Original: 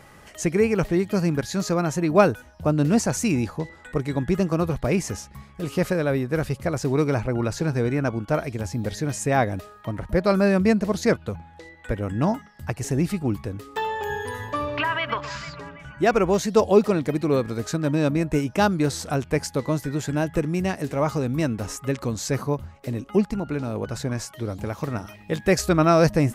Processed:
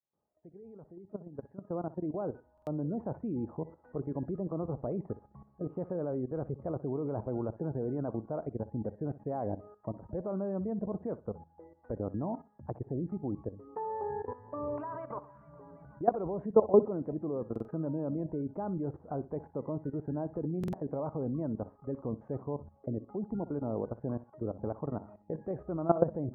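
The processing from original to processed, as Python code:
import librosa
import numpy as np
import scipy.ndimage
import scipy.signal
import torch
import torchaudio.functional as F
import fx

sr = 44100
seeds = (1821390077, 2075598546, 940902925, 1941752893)

y = fx.fade_in_head(x, sr, length_s=3.82)
y = scipy.signal.sosfilt(scipy.signal.butter(2, 52.0, 'highpass', fs=sr, output='sos'), y)
y = fx.spec_gate(y, sr, threshold_db=-30, keep='strong')
y = fx.low_shelf(y, sr, hz=130.0, db=-10.5)
y = fx.level_steps(y, sr, step_db=16)
y = scipy.signal.sosfilt(scipy.signal.cheby2(4, 70, 4100.0, 'lowpass', fs=sr, output='sos'), y)
y = fx.echo_feedback(y, sr, ms=62, feedback_pct=22, wet_db=-17.0)
y = fx.buffer_glitch(y, sr, at_s=(2.53, 17.51, 20.59), block=2048, repeats=2)
y = y * 10.0 ** (-1.5 / 20.0)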